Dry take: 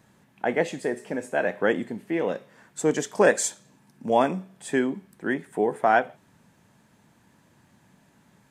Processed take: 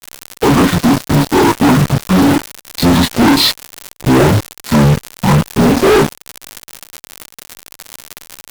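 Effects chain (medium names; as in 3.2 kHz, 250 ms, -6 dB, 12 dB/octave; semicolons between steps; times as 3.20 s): frequency-domain pitch shifter -10 st; treble shelf 2.4 kHz -5.5 dB; word length cut 8-bit, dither none; chorus voices 6, 0.38 Hz, delay 25 ms, depth 3.8 ms; crackle 180 per s -39 dBFS; fuzz box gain 42 dB, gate -41 dBFS; trim +6.5 dB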